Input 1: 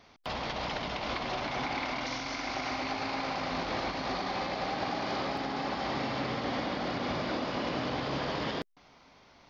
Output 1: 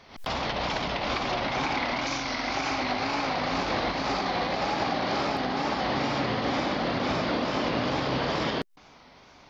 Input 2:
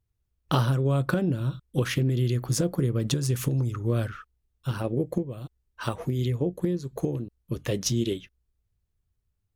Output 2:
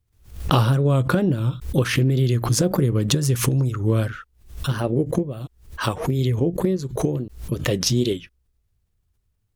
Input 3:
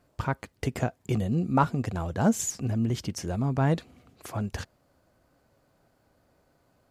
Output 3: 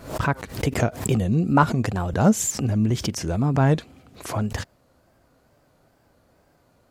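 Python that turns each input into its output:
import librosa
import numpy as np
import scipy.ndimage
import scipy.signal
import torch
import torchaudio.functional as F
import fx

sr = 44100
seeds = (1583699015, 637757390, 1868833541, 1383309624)

y = fx.wow_flutter(x, sr, seeds[0], rate_hz=2.1, depth_cents=100.0)
y = fx.pre_swell(y, sr, db_per_s=120.0)
y = y * 10.0 ** (5.5 / 20.0)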